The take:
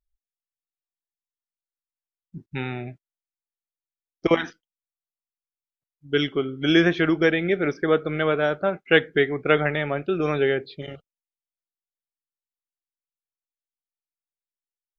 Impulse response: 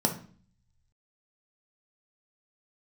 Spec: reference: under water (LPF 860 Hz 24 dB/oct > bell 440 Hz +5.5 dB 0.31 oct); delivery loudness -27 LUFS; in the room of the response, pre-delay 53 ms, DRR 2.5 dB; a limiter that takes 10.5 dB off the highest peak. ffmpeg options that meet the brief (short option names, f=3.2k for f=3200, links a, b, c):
-filter_complex "[0:a]alimiter=limit=-13dB:level=0:latency=1,asplit=2[a][b];[1:a]atrim=start_sample=2205,adelay=53[c];[b][c]afir=irnorm=-1:irlink=0,volume=-12dB[d];[a][d]amix=inputs=2:normalize=0,lowpass=f=860:w=0.5412,lowpass=f=860:w=1.3066,equalizer=f=440:t=o:w=0.31:g=5.5,volume=-7dB"